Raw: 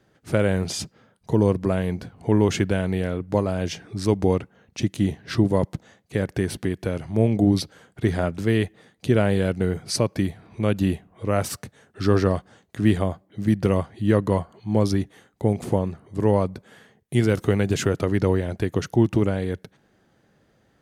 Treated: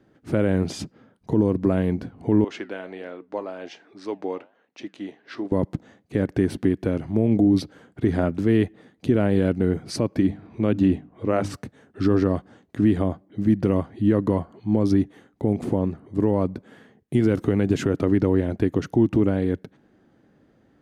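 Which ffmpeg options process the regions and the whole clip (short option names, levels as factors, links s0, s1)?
-filter_complex "[0:a]asettb=1/sr,asplit=3[s0][s1][s2];[s0]atrim=end=2.444[s3];[s1]atrim=start=2.44:end=5.52,asetpts=PTS-STARTPTS,afade=t=in:d=0.004:c=qsin,afade=t=out:st=3.076:d=0.004:c=qsin,flanger=delay=5.5:depth=6.1:regen=-82:speed=1.3:shape=sinusoidal,highpass=570,lowpass=5400[s4];[s2]atrim=start=5.516[s5];[s3][s4]acrossfade=d=0.004:c1=hsin:c2=qsin[s6];[s6][s5]acrossfade=d=0.004:c1=qsin:c2=hsin,asettb=1/sr,asplit=3[s7][s8][s9];[s7]atrim=end=10.194[s10];[s8]atrim=start=10.19:end=11.54,asetpts=PTS-STARTPTS,afade=t=in:d=0.004:c=qsin,afade=t=out:st=1.346:d=0.004:c=qsin,lowpass=8000,bandreject=f=50:t=h:w=6,bandreject=f=100:t=h:w=6,bandreject=f=150:t=h:w=6,bandreject=f=200:t=h:w=6,bandreject=f=250:t=h:w=6,bandreject=f=300:t=h:w=6[s11];[s9]atrim=start=11.536[s12];[s10][s11]acrossfade=d=0.004:c1=hsin:c2=qsin[s13];[s13][s12]acrossfade=d=0.004:c1=qsin:c2=hsin,equalizer=f=280:t=o:w=0.77:g=9,alimiter=limit=0.335:level=0:latency=1:release=91,highshelf=f=3700:g=-10"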